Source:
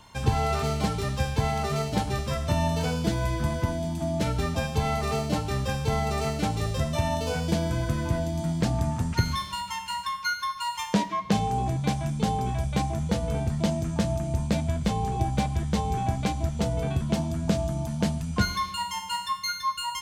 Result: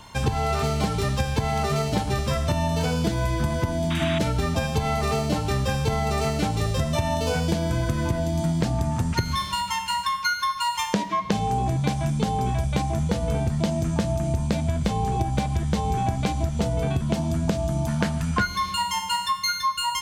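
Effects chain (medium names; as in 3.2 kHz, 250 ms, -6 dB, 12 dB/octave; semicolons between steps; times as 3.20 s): 17.88–18.47 s: peaking EQ 1.5 kHz +10.5 dB 1.2 oct; compression 10:1, threshold -26 dBFS, peak gain reduction 12 dB; 3.90–4.19 s: painted sound noise 1–3.9 kHz -38 dBFS; trim +6.5 dB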